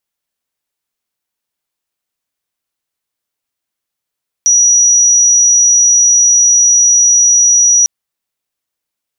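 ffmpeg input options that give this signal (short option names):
-f lavfi -i "aevalsrc='0.562*sin(2*PI*5820*t)':d=3.4:s=44100"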